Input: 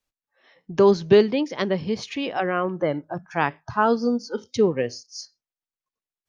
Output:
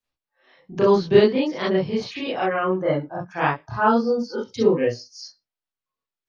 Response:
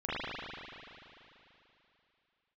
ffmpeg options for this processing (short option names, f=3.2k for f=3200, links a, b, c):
-filter_complex "[1:a]atrim=start_sample=2205,atrim=end_sample=4410,asetrate=61740,aresample=44100[a];[0:a][a]afir=irnorm=-1:irlink=0"